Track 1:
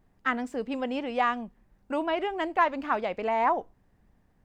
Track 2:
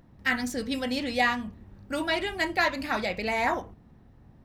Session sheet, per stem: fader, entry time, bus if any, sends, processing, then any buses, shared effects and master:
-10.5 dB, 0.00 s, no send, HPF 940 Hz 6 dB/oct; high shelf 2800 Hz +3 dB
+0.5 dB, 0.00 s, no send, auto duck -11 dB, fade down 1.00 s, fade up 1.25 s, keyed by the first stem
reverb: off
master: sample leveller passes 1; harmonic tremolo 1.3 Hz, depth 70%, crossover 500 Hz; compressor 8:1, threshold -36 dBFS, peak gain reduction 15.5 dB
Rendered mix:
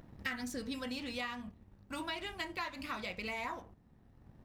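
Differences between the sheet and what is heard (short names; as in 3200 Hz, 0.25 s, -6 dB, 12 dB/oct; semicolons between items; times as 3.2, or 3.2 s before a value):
stem 2: polarity flipped; master: missing harmonic tremolo 1.3 Hz, depth 70%, crossover 500 Hz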